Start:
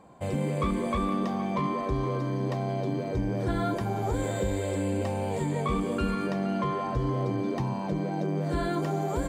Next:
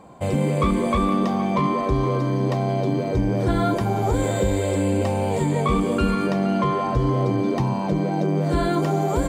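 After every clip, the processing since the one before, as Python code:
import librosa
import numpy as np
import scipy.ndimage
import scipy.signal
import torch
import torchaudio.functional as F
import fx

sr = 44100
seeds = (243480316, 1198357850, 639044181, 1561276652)

y = fx.peak_eq(x, sr, hz=1700.0, db=-3.5, octaves=0.23)
y = y * 10.0 ** (7.5 / 20.0)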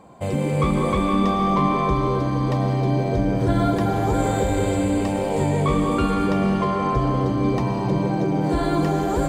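y = fx.rev_freeverb(x, sr, rt60_s=3.6, hf_ratio=0.85, predelay_ms=80, drr_db=2.5)
y = y * 10.0 ** (-1.5 / 20.0)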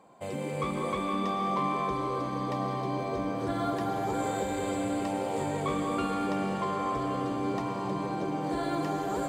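y = fx.highpass(x, sr, hz=340.0, slope=6)
y = fx.echo_diffused(y, sr, ms=1206, feedback_pct=55, wet_db=-10)
y = y * 10.0 ** (-7.5 / 20.0)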